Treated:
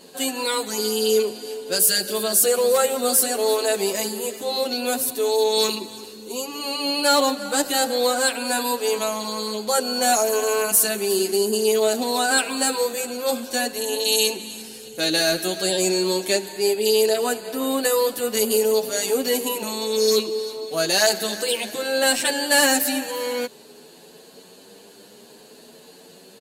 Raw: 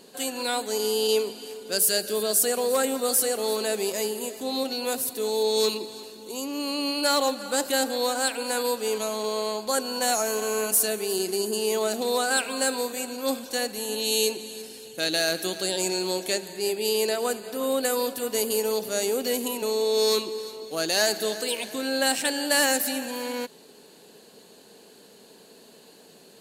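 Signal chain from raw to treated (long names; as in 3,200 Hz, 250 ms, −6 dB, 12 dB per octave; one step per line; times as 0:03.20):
barber-pole flanger 8.9 ms +0.58 Hz
level +7.5 dB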